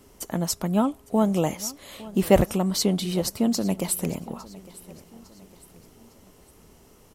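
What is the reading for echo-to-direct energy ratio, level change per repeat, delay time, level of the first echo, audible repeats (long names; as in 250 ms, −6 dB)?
−18.5 dB, −7.0 dB, 856 ms, −19.5 dB, 3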